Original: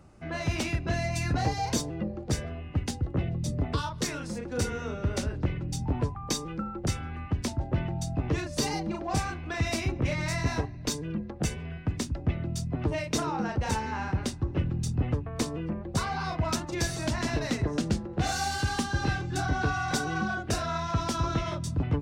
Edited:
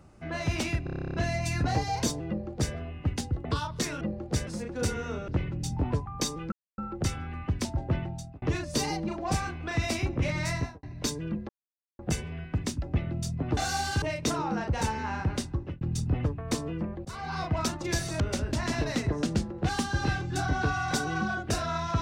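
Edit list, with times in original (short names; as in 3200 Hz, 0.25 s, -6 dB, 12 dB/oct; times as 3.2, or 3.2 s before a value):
0.84 stutter 0.03 s, 11 plays
1.98–2.44 copy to 4.23
3.15–3.67 cut
5.04–5.37 move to 17.08
6.61 insert silence 0.26 s
7.77–8.25 fade out linear
10.34–10.66 studio fade out
11.32 insert silence 0.50 s
14.4–14.69 fade out
15.93–16.28 fade in, from -18 dB
18.24–18.69 move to 12.9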